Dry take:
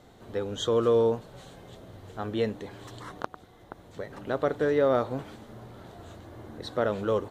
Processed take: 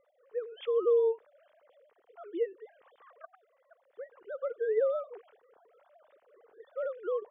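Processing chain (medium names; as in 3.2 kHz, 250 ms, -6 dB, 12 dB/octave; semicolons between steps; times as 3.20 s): formants replaced by sine waves; distance through air 350 m; trim -4 dB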